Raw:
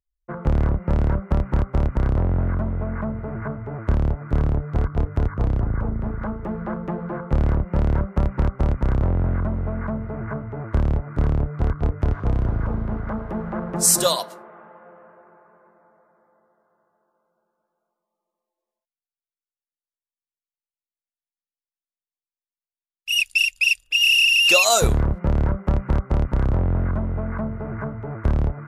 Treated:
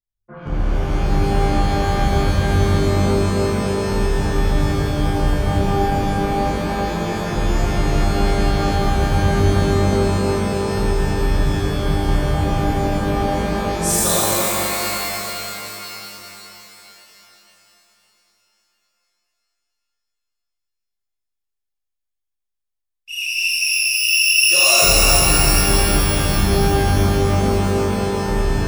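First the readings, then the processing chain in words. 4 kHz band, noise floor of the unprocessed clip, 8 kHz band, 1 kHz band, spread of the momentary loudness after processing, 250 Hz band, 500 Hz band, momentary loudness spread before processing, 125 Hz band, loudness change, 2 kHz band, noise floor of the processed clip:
+4.0 dB, below −85 dBFS, +6.0 dB, +9.5 dB, 10 LU, +6.5 dB, +8.0 dB, 13 LU, +3.0 dB, +4.5 dB, +2.5 dB, −78 dBFS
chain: reverb with rising layers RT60 3.6 s, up +12 semitones, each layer −2 dB, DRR −11.5 dB
level −11 dB

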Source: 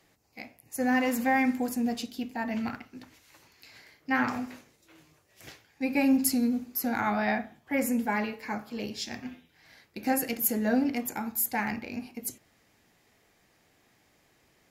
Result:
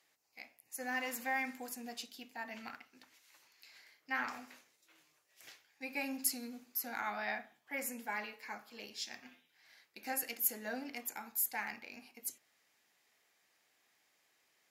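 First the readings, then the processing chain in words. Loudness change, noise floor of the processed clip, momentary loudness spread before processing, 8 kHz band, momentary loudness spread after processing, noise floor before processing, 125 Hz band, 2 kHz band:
−10.5 dB, −76 dBFS, 15 LU, −5.5 dB, 20 LU, −67 dBFS, below −20 dB, −7.0 dB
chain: high-pass filter 1,300 Hz 6 dB per octave
level −5.5 dB

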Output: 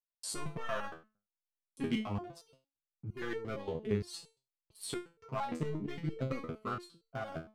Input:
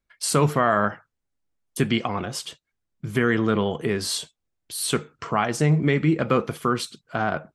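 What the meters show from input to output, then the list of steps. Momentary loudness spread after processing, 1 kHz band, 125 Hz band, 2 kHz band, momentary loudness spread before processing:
11 LU, −16.5 dB, −16.0 dB, −17.5 dB, 11 LU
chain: adaptive Wiener filter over 25 samples
gain into a clipping stage and back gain 13.5 dB
low-shelf EQ 68 Hz +8.5 dB
noise gate −53 dBFS, range −28 dB
step-sequenced resonator 8.7 Hz 81–450 Hz
level −1.5 dB

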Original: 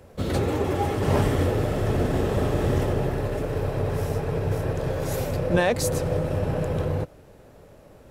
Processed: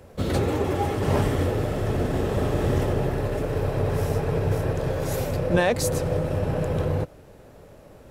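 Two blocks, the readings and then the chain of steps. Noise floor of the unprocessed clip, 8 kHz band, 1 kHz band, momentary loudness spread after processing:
−50 dBFS, +0.5 dB, 0.0 dB, 4 LU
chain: speech leveller 2 s

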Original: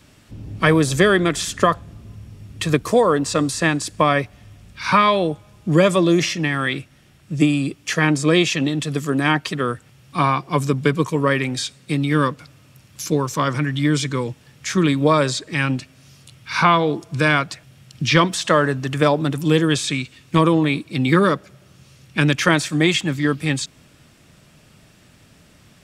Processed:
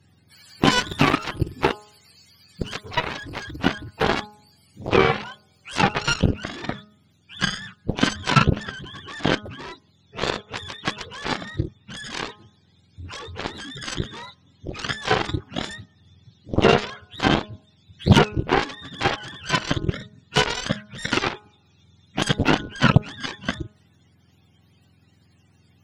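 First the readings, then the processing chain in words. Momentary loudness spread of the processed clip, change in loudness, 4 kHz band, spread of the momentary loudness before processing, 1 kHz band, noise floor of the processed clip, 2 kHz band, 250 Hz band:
18 LU, −4.5 dB, −1.0 dB, 10 LU, −4.5 dB, −60 dBFS, −4.0 dB, −7.0 dB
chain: frequency axis turned over on the octave scale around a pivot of 690 Hz
harmonic generator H 7 −14 dB, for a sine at −2 dBFS
hum removal 209.7 Hz, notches 7

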